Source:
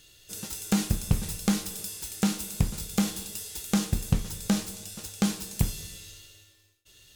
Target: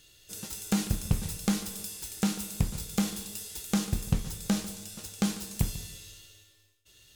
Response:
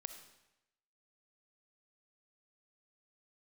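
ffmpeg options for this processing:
-filter_complex "[0:a]asplit=2[s0][s1];[1:a]atrim=start_sample=2205,adelay=145[s2];[s1][s2]afir=irnorm=-1:irlink=0,volume=0.251[s3];[s0][s3]amix=inputs=2:normalize=0,volume=0.75"

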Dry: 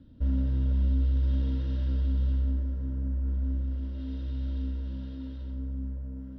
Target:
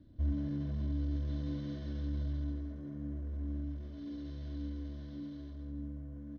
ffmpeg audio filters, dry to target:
-af "aecho=1:1:128.3|279.9:0.562|0.282,asetrate=48091,aresample=44100,atempo=0.917004,volume=0.531"

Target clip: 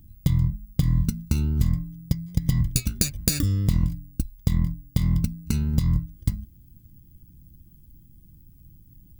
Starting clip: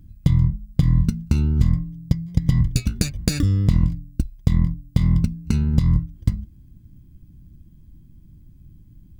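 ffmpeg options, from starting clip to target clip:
-af "aemphasis=mode=production:type=50fm,volume=0.631"

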